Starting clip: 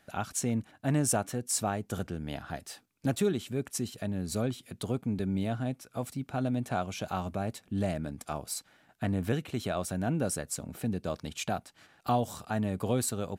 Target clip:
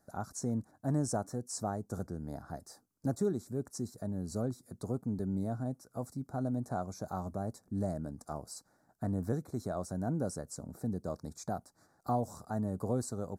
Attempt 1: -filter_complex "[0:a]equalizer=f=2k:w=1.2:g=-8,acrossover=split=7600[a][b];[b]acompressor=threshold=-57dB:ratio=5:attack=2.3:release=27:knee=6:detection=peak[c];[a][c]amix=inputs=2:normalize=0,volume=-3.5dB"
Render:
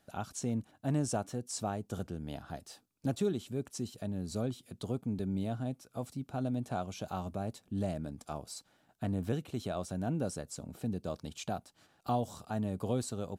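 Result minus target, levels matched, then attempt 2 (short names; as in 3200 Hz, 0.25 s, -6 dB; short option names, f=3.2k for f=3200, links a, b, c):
4000 Hz band +6.5 dB
-filter_complex "[0:a]asuperstop=centerf=2900:order=4:qfactor=0.85,equalizer=f=2k:w=1.2:g=-8,acrossover=split=7600[a][b];[b]acompressor=threshold=-57dB:ratio=5:attack=2.3:release=27:knee=6:detection=peak[c];[a][c]amix=inputs=2:normalize=0,volume=-3.5dB"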